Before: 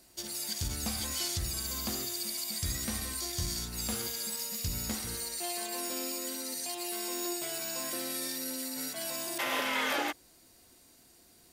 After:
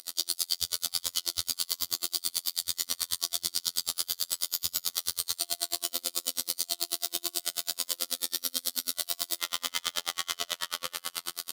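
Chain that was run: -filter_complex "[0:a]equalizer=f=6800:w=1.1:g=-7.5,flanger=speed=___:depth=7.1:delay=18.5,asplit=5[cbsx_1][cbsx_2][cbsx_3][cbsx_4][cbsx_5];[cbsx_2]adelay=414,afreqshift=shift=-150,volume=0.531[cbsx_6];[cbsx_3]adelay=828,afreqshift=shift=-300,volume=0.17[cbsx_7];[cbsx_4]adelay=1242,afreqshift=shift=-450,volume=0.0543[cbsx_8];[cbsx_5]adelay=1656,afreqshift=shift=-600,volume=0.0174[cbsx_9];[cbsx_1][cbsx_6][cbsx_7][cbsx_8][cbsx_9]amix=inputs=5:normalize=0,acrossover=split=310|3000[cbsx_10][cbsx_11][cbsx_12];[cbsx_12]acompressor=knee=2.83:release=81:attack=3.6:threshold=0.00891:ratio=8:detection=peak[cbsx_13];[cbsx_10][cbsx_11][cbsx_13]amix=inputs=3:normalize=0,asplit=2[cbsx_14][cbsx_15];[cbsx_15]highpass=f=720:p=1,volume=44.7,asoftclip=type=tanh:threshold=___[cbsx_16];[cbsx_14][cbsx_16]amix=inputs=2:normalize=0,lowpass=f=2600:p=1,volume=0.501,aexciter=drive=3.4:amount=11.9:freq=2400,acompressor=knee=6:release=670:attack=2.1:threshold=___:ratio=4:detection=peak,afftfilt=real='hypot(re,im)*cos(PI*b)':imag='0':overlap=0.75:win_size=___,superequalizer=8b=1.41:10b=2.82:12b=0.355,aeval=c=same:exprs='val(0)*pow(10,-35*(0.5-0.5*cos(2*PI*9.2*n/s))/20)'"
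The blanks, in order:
2.7, 0.0841, 0.126, 2048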